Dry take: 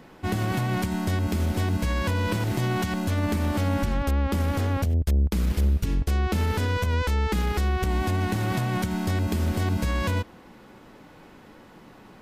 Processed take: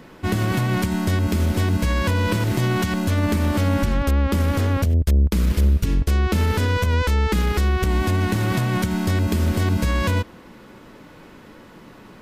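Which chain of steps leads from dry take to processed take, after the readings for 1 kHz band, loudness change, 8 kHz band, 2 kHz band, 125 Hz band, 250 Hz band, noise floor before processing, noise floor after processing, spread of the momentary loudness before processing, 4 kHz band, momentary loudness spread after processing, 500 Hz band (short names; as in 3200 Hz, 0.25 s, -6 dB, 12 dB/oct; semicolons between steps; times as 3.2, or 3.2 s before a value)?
+3.0 dB, +5.0 dB, +5.0 dB, +5.0 dB, +5.0 dB, +5.0 dB, -49 dBFS, -45 dBFS, 2 LU, +5.0 dB, 2 LU, +4.5 dB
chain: bell 780 Hz -7.5 dB 0.2 oct; gain +5 dB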